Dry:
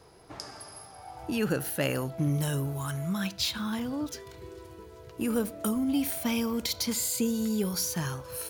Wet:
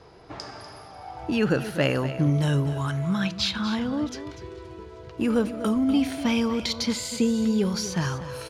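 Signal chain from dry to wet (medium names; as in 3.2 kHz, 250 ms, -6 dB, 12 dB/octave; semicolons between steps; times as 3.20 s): low-pass 4.8 kHz 12 dB/octave; delay 245 ms -12.5 dB; trim +5.5 dB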